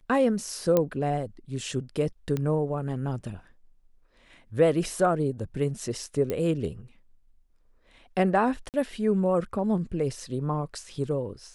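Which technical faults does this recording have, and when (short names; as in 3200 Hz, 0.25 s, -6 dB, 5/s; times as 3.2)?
0.77 pop -10 dBFS
2.37 pop -17 dBFS
6.3 pop -16 dBFS
8.69–8.74 gap 48 ms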